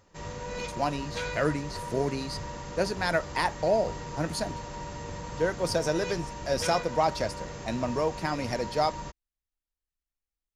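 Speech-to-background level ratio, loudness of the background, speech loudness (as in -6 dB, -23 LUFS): 8.0 dB, -38.0 LUFS, -30.0 LUFS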